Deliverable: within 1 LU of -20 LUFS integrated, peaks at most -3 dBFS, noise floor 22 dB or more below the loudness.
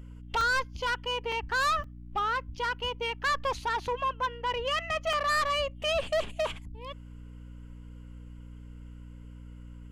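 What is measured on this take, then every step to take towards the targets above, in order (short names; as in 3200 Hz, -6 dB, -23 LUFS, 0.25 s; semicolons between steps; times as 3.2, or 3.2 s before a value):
dropouts 4; longest dropout 2.8 ms; hum 60 Hz; harmonics up to 300 Hz; hum level -43 dBFS; loudness -30.0 LUFS; peak -20.0 dBFS; loudness target -20.0 LUFS
-> interpolate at 0.41/1.32/1.84/5.13, 2.8 ms; de-hum 60 Hz, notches 5; gain +10 dB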